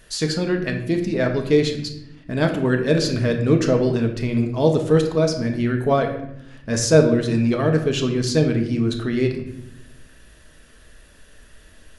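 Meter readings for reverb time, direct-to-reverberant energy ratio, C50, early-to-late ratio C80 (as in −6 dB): 0.80 s, 3.5 dB, 8.0 dB, 10.5 dB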